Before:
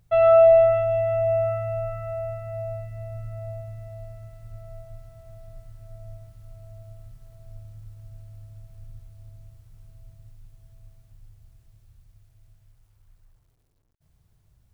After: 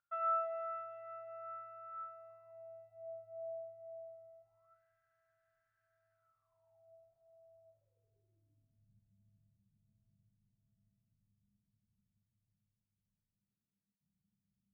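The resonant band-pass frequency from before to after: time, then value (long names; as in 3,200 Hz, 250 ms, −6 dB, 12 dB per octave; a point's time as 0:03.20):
resonant band-pass, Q 16
0:01.91 1,400 Hz
0:03.09 690 Hz
0:04.41 690 Hz
0:04.81 1,600 Hz
0:06.10 1,600 Hz
0:06.93 690 Hz
0:07.63 690 Hz
0:08.91 200 Hz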